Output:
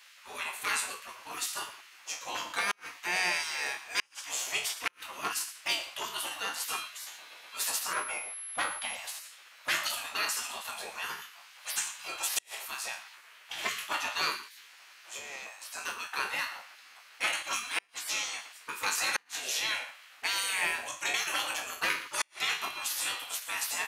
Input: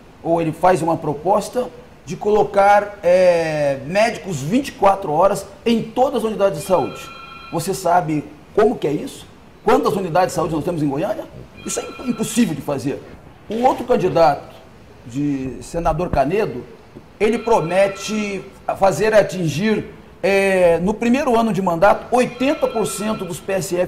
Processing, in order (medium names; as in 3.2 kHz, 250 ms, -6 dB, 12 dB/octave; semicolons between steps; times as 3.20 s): spectral sustain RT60 0.37 s; delay 116 ms -14.5 dB; spectral gate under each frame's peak -20 dB weak; high-pass 1.5 kHz 6 dB/octave; inverted gate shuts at -15 dBFS, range -39 dB; 7.93–8.95 s: class-D stage that switches slowly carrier 11 kHz